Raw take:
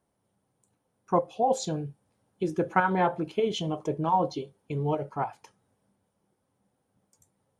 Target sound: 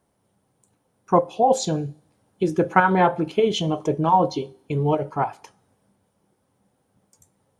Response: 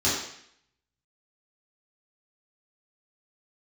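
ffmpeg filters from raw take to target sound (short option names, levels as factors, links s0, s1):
-filter_complex "[0:a]asplit=2[s0][s1];[1:a]atrim=start_sample=2205[s2];[s1][s2]afir=irnorm=-1:irlink=0,volume=0.015[s3];[s0][s3]amix=inputs=2:normalize=0,volume=2.24"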